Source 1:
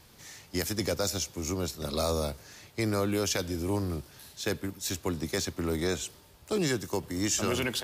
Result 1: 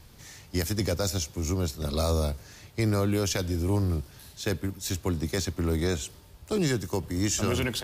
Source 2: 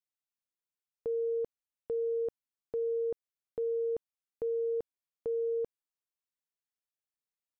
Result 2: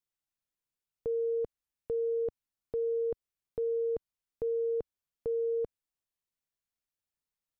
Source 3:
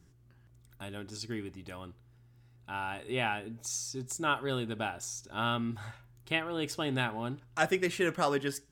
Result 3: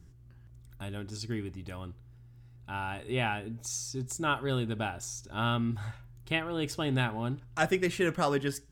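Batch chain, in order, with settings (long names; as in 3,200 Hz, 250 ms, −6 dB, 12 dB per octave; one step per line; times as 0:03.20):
low-shelf EQ 130 Hz +12 dB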